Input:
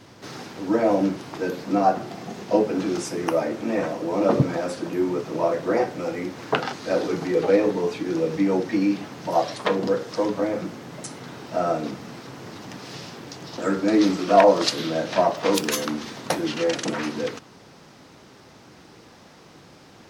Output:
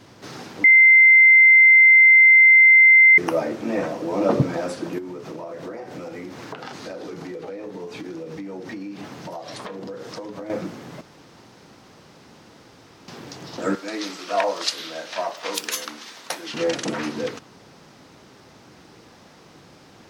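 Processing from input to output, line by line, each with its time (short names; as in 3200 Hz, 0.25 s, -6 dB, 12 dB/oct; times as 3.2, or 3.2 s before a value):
0.64–3.18 bleep 2080 Hz -8 dBFS
4.98–10.5 compressor 16:1, threshold -30 dBFS
11.01–13.08 room tone
13.75–16.54 HPF 1500 Hz 6 dB/oct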